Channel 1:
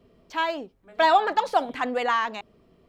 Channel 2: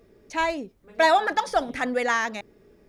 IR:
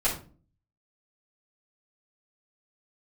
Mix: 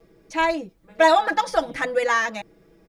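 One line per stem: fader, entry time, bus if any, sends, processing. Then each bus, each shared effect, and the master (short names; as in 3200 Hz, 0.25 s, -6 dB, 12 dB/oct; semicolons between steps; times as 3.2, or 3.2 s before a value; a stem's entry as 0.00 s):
-11.0 dB, 0.00 s, no send, dry
-1.0 dB, 3.3 ms, no send, comb 6.1 ms, depth 96%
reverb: off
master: dry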